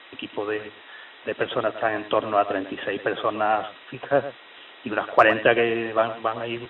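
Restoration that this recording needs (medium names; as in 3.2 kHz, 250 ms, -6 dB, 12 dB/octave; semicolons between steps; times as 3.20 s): band-stop 1.9 kHz, Q 30; noise print and reduce 22 dB; inverse comb 108 ms -14 dB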